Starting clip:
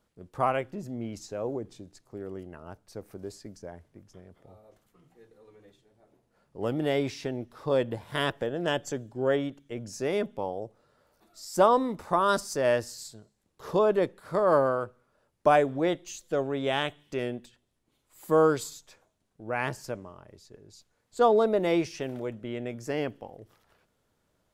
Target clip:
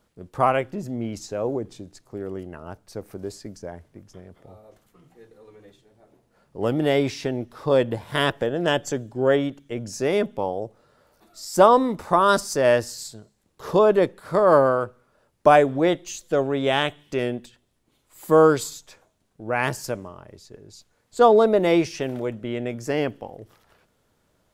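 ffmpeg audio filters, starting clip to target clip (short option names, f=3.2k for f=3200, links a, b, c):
-filter_complex "[0:a]asettb=1/sr,asplit=3[a][b][c];[a]atrim=end=19.634[d];[b]atrim=start=19.63:end=20.08,asetpts=PTS-STARTPTS,afade=t=in:d=0.004:c=qsin,afade=t=out:st=0.446:d=0.004:c=qsin,highshelf=f=5.7k:g=7[e];[c]atrim=start=20.076[f];[d][e]acrossfade=d=0.004:c1=hsin:c2=qsin[g];[g][f]acrossfade=d=0.004:c1=qsin:c2=hsin,volume=6.5dB"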